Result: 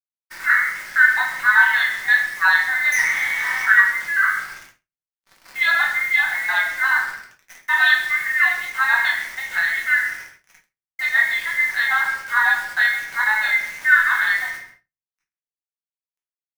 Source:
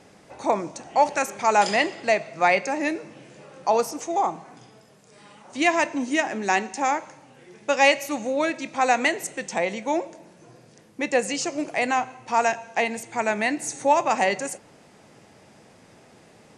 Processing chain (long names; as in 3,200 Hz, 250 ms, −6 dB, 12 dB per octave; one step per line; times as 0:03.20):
frequency inversion band by band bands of 2,000 Hz
in parallel at −1.5 dB: speech leveller within 4 dB 0.5 s
on the sum: single-sideband voice off tune +390 Hz 420–2,900 Hz
0:02.92–0:03.66: leveller curve on the samples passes 5
bit reduction 6 bits
on a send: single-tap delay 132 ms −16 dB
on the sum: rectangular room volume 120 cubic metres, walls mixed, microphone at 1.1 metres
downward expander −39 dBFS
level −4 dB